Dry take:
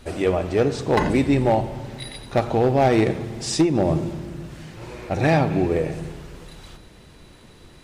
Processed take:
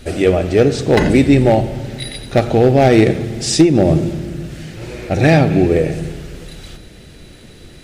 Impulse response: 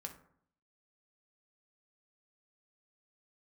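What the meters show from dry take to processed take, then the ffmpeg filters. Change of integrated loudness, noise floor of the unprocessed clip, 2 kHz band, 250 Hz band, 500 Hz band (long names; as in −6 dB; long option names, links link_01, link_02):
+7.5 dB, −48 dBFS, +7.0 dB, +8.0 dB, +7.5 dB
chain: -af "equalizer=frequency=1000:width_type=o:width=0.59:gain=-12,volume=8.5dB"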